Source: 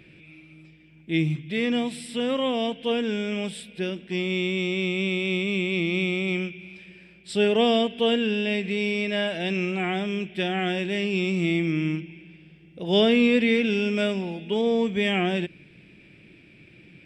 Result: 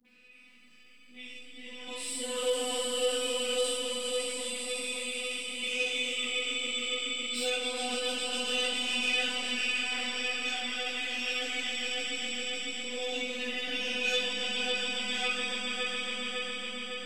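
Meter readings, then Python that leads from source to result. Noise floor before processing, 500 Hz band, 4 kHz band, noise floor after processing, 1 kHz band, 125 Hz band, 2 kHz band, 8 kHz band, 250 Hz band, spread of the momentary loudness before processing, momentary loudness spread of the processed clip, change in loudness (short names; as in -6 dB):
-52 dBFS, -10.0 dB, +1.5 dB, -55 dBFS, -7.0 dB, under -30 dB, -3.0 dB, +11.5 dB, -18.5 dB, 9 LU, 6 LU, -6.0 dB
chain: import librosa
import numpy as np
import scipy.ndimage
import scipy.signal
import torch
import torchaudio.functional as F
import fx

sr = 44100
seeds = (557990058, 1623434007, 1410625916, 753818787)

p1 = fx.comb_fb(x, sr, f0_hz=75.0, decay_s=0.25, harmonics='odd', damping=0.0, mix_pct=80)
p2 = fx.dispersion(p1, sr, late='highs', ms=53.0, hz=580.0)
p3 = fx.robotise(p2, sr, hz=251.0)
p4 = fx.over_compress(p3, sr, threshold_db=-34.0, ratio=-0.5)
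p5 = p3 + (p4 * librosa.db_to_amplitude(2.0))
p6 = fx.tremolo_random(p5, sr, seeds[0], hz=3.2, depth_pct=75)
p7 = p6 + fx.echo_swell(p6, sr, ms=138, loudest=5, wet_db=-5.0, dry=0)
p8 = fx.dynamic_eq(p7, sr, hz=170.0, q=0.76, threshold_db=-42.0, ratio=4.0, max_db=-6)
p9 = 10.0 ** (-21.0 / 20.0) * np.tanh(p8 / 10.0 ** (-21.0 / 20.0))
p10 = fx.tilt_eq(p9, sr, slope=2.5)
p11 = fx.rev_schroeder(p10, sr, rt60_s=0.5, comb_ms=26, drr_db=-2.5)
y = fx.ensemble(p11, sr)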